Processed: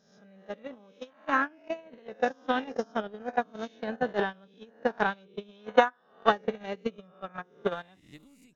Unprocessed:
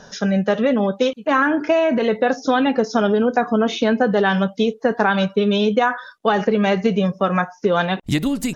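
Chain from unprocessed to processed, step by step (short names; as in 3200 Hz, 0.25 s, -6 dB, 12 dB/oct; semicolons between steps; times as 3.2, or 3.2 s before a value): spectral swells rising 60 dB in 0.89 s; gate -10 dBFS, range -43 dB; gain +5 dB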